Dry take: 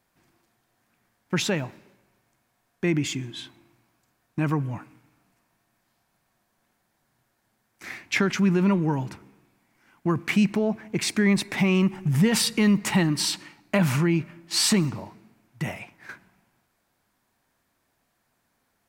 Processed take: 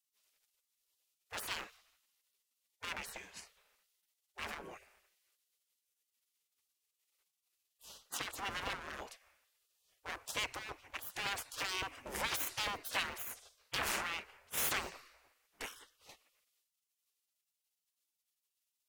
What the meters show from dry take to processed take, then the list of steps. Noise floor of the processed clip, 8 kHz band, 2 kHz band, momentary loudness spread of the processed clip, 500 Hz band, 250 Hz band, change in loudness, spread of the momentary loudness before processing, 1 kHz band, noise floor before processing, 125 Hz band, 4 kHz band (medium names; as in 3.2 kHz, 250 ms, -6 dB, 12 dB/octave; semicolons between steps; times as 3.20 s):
under -85 dBFS, -12.5 dB, -10.0 dB, 18 LU, -20.0 dB, -33.0 dB, -15.5 dB, 16 LU, -8.0 dB, -73 dBFS, -31.5 dB, -11.5 dB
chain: one-sided wavefolder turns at -23.5 dBFS; spectral gate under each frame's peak -20 dB weak; trim -2.5 dB